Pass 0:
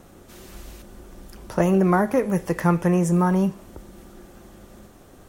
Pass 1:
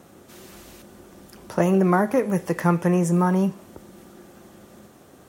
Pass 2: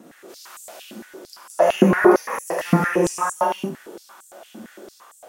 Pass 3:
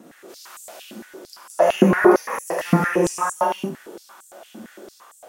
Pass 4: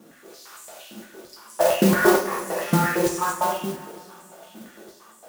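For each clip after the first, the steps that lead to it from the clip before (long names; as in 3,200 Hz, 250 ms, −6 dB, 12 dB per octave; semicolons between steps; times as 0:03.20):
high-pass filter 110 Hz 12 dB per octave
convolution reverb, pre-delay 3 ms, DRR −5 dB; high-pass on a step sequencer 8.8 Hz 240–7,800 Hz; level −2.5 dB
no processing that can be heard
coupled-rooms reverb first 0.45 s, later 2.7 s, from −18 dB, DRR −0.5 dB; noise that follows the level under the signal 13 dB; level −5.5 dB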